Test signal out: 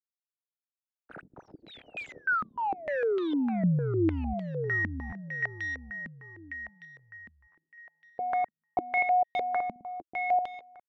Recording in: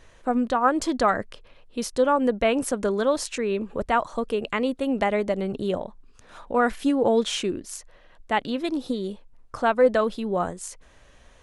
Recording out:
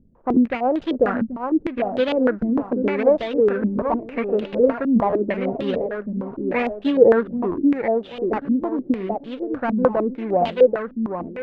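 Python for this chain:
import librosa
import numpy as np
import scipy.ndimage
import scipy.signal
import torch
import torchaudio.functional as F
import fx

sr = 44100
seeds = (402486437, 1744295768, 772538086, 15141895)

y = scipy.signal.medfilt(x, 41)
y = fx.low_shelf(y, sr, hz=61.0, db=-11.5)
y = fx.echo_feedback(y, sr, ms=784, feedback_pct=37, wet_db=-5.5)
y = fx.buffer_glitch(y, sr, at_s=(0.33, 0.92, 5.09, 7.51), block=512, repeats=2)
y = fx.filter_held_lowpass(y, sr, hz=6.6, low_hz=220.0, high_hz=3300.0)
y = F.gain(torch.from_numpy(y), 2.0).numpy()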